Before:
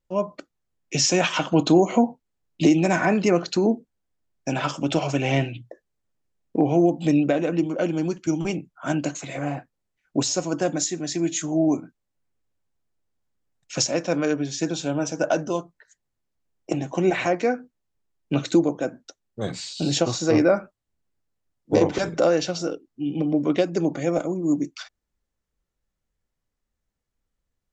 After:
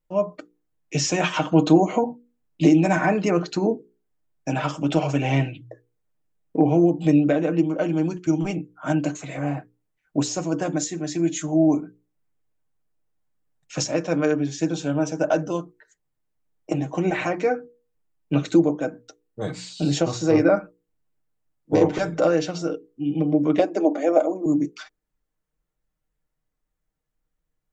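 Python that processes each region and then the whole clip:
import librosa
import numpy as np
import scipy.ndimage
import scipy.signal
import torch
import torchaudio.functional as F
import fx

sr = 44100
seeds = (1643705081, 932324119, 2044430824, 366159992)

y = fx.chain(x, sr, fx.cheby1_highpass(hz=210.0, order=6),
    fx.peak_eq(hz=650.0, db=10.0, octaves=0.74), at=(23.59, 24.46))
y = fx.peak_eq(y, sr, hz=5000.0, db=-6.0, octaves=1.7)
y = fx.hum_notches(y, sr, base_hz=60, count=8)
y = y + 0.5 * np.pad(y, (int(6.5 * sr / 1000.0), 0))[:len(y)]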